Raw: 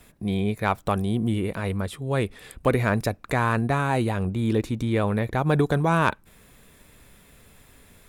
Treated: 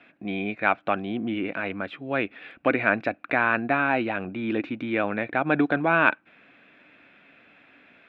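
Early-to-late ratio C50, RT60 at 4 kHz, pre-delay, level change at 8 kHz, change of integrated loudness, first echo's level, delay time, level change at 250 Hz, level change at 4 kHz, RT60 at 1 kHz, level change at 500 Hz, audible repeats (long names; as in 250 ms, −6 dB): no reverb audible, no reverb audible, no reverb audible, below −30 dB, −0.5 dB, no echo audible, no echo audible, −2.0 dB, −2.5 dB, no reverb audible, −1.5 dB, no echo audible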